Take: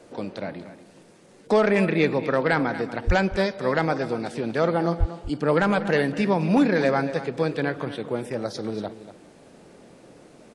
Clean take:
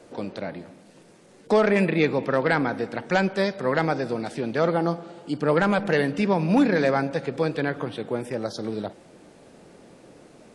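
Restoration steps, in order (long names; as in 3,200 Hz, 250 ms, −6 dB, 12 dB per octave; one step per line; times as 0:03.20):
high-pass at the plosives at 0:03.06/0:04.99
echo removal 239 ms −13.5 dB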